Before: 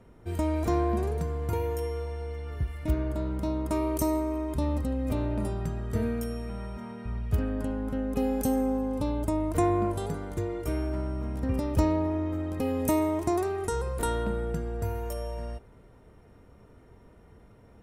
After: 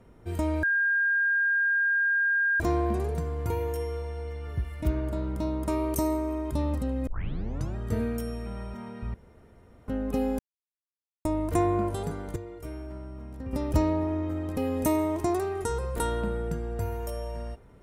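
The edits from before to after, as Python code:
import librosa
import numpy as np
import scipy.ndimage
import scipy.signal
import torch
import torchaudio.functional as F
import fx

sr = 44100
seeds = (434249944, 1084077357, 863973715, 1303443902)

y = fx.edit(x, sr, fx.insert_tone(at_s=0.63, length_s=1.97, hz=1610.0, db=-21.5),
    fx.tape_start(start_s=5.1, length_s=0.69),
    fx.room_tone_fill(start_s=7.17, length_s=0.74),
    fx.silence(start_s=8.42, length_s=0.86),
    fx.clip_gain(start_s=10.39, length_s=1.17, db=-8.5), tone=tone)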